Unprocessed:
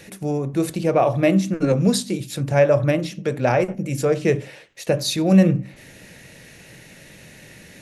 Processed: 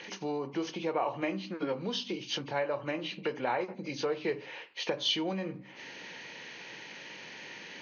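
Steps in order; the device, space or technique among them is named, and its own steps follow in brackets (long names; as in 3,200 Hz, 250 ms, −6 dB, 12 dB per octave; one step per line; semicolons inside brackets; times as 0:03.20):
hearing aid with frequency lowering (hearing-aid frequency compression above 2,000 Hz 1.5 to 1; downward compressor 3 to 1, threshold −29 dBFS, peak gain reduction 15 dB; loudspeaker in its box 340–6,500 Hz, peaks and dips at 620 Hz −7 dB, 940 Hz +9 dB, 2,800 Hz +8 dB, 5,600 Hz −4 dB)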